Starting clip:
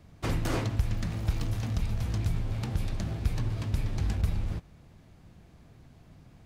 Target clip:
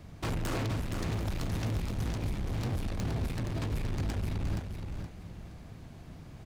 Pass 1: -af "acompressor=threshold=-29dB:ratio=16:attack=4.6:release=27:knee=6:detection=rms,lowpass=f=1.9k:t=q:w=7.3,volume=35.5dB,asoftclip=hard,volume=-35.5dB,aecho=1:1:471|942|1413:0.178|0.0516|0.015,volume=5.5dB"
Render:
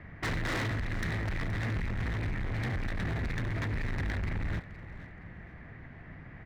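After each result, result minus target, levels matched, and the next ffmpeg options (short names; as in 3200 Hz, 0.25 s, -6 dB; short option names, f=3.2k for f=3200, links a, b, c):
2000 Hz band +8.0 dB; echo-to-direct -9 dB
-af "acompressor=threshold=-29dB:ratio=16:attack=4.6:release=27:knee=6:detection=rms,volume=35.5dB,asoftclip=hard,volume=-35.5dB,aecho=1:1:471|942|1413:0.178|0.0516|0.015,volume=5.5dB"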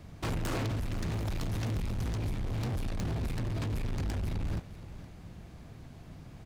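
echo-to-direct -9 dB
-af "acompressor=threshold=-29dB:ratio=16:attack=4.6:release=27:knee=6:detection=rms,volume=35.5dB,asoftclip=hard,volume=-35.5dB,aecho=1:1:471|942|1413|1884:0.501|0.145|0.0421|0.0122,volume=5.5dB"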